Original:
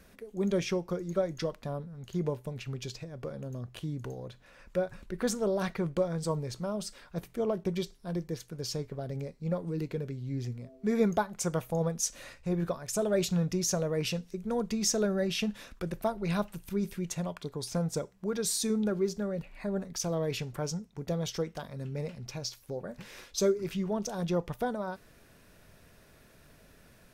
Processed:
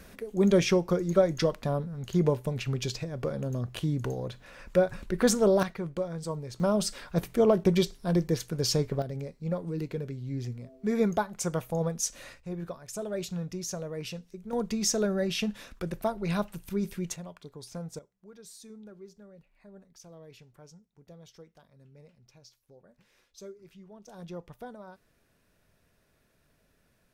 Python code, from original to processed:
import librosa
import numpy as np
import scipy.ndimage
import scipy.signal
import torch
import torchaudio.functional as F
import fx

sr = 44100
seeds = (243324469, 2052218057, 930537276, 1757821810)

y = fx.gain(x, sr, db=fx.steps((0.0, 7.0), (5.63, -3.0), (6.6, 8.5), (9.02, 0.5), (12.4, -6.0), (14.53, 1.0), (17.16, -8.0), (17.99, -18.5), (24.08, -11.0)))